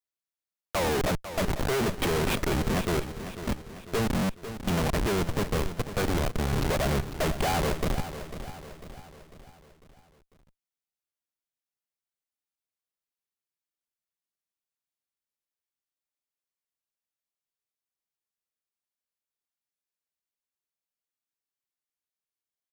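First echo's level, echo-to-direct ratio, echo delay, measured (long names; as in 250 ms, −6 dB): −11.5 dB, −10.5 dB, 498 ms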